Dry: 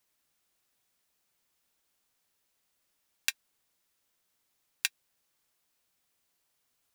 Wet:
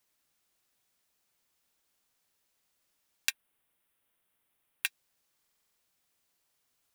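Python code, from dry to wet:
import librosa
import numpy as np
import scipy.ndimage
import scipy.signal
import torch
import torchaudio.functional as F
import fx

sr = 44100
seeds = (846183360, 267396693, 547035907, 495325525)

y = fx.band_shelf(x, sr, hz=5600.0, db=-11.5, octaves=1.1, at=(3.3, 4.86))
y = fx.buffer_glitch(y, sr, at_s=(5.41,), block=2048, repeats=7)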